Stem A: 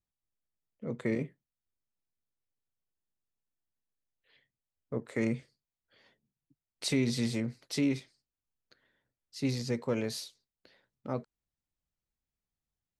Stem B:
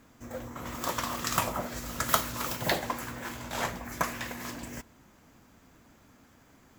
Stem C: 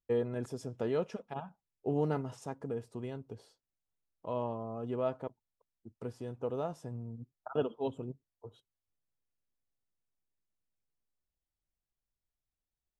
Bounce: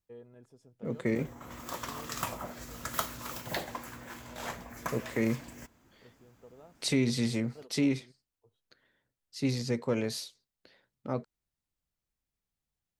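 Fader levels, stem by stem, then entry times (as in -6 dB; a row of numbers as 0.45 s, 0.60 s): +1.5 dB, -7.0 dB, -18.5 dB; 0.00 s, 0.85 s, 0.00 s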